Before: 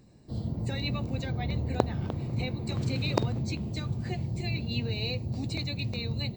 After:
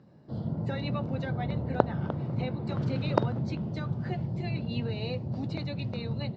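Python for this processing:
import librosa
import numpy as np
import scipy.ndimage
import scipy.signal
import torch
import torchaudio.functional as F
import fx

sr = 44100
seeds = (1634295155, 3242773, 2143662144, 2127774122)

y = fx.cabinet(x, sr, low_hz=110.0, low_slope=12, high_hz=4500.0, hz=(160.0, 580.0, 900.0, 1400.0, 2400.0, 4100.0), db=(6, 5, 4, 8, -8, -8))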